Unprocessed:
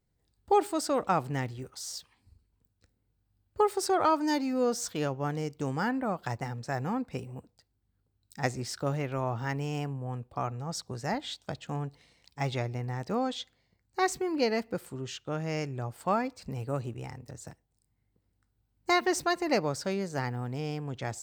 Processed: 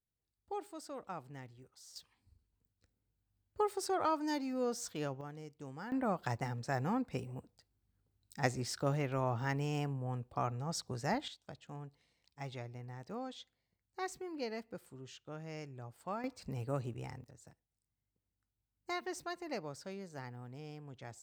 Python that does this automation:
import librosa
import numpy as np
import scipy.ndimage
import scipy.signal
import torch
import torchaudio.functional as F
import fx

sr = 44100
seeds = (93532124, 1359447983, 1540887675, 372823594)

y = fx.gain(x, sr, db=fx.steps((0.0, -17.5), (1.96, -8.0), (5.21, -15.5), (5.92, -3.0), (11.28, -13.0), (16.24, -4.5), (17.24, -14.0)))